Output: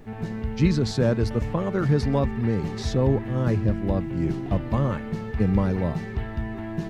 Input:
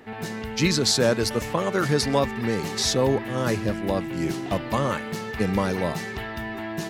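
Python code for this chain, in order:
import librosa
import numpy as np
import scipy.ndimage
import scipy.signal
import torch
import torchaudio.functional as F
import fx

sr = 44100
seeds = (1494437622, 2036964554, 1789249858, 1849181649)

y = fx.riaa(x, sr, side='playback')
y = fx.dmg_noise_colour(y, sr, seeds[0], colour='brown', level_db=-42.0)
y = y * librosa.db_to_amplitude(-5.5)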